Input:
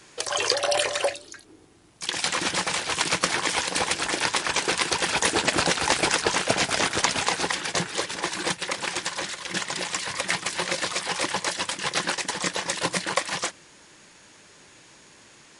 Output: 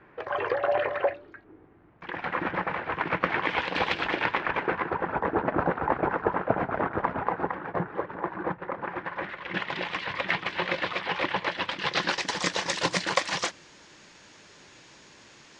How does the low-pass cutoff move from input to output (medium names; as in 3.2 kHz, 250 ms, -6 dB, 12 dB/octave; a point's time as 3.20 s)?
low-pass 24 dB/octave
3.00 s 1.9 kHz
3.90 s 3.5 kHz
5.05 s 1.4 kHz
8.77 s 1.4 kHz
9.73 s 3.2 kHz
11.55 s 3.2 kHz
12.40 s 6.5 kHz